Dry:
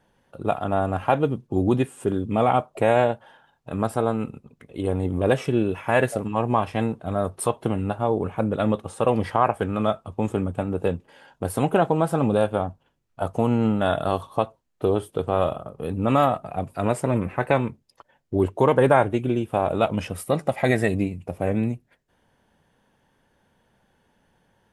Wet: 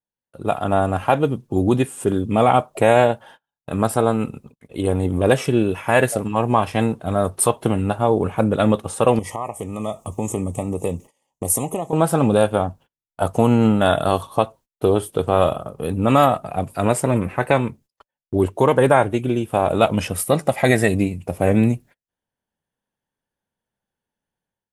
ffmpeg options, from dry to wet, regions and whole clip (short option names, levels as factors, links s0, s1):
-filter_complex "[0:a]asettb=1/sr,asplit=3[s0][s1][s2];[s0]atrim=end=9.194[s3];[s1]atrim=start=9.19:end=11.93,asetpts=PTS-STARTPTS,afade=t=in:d=0.004:c=qsin,afade=t=out:st=2.736:d=0.004:c=qsin,highshelf=f=5300:t=q:w=3:g=6.5,acompressor=threshold=0.0141:ratio=2:attack=3.2:release=140:knee=1:detection=peak,asuperstop=centerf=1500:order=8:qfactor=2.6[s4];[s2]atrim=start=11.926[s5];[s3][s4]acrossfade=d=0.004:c1=hsin:c2=qsin[s6];[s6][s5]acrossfade=d=0.004:c1=qsin:c2=hsin,agate=range=0.0251:threshold=0.00447:ratio=16:detection=peak,highshelf=f=5400:g=9.5,dynaudnorm=f=360:g=3:m=3.76,volume=0.891"